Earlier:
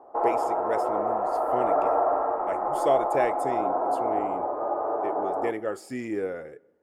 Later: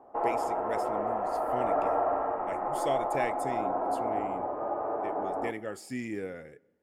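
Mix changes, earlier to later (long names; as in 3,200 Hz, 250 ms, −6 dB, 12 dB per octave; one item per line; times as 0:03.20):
background +3.5 dB
master: add flat-topped bell 680 Hz −8 dB 2.5 octaves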